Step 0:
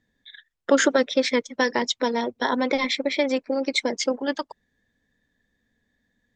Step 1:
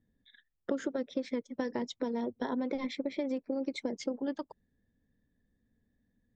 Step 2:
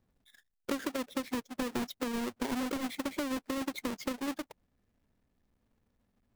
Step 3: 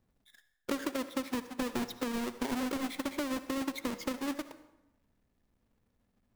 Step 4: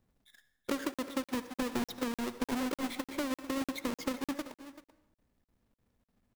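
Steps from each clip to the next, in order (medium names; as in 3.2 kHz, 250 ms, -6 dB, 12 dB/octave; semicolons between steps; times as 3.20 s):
tilt shelf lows +9 dB, about 650 Hz; compression 6:1, threshold -22 dBFS, peak gain reduction 12.5 dB; trim -8 dB
square wave that keeps the level; trim -4.5 dB
reverberation RT60 0.95 s, pre-delay 53 ms, DRR 12 dB
delay 386 ms -15 dB; crackling interface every 0.30 s, samples 2048, zero, from 0.94 s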